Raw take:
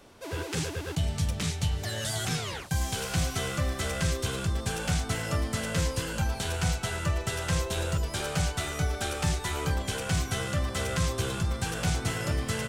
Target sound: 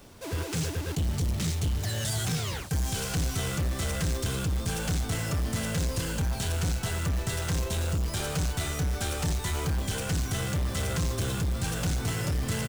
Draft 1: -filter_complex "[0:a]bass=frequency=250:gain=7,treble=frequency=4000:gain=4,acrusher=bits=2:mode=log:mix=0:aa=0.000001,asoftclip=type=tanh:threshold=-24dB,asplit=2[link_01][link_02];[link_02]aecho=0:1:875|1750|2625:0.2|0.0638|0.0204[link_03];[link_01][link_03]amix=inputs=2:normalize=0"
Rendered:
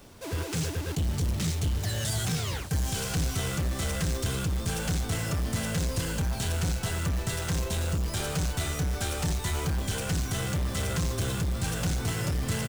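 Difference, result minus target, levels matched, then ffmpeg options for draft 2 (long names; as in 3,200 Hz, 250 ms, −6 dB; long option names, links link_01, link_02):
echo-to-direct +10 dB
-filter_complex "[0:a]bass=frequency=250:gain=7,treble=frequency=4000:gain=4,acrusher=bits=2:mode=log:mix=0:aa=0.000001,asoftclip=type=tanh:threshold=-24dB,asplit=2[link_01][link_02];[link_02]aecho=0:1:875|1750:0.0631|0.0202[link_03];[link_01][link_03]amix=inputs=2:normalize=0"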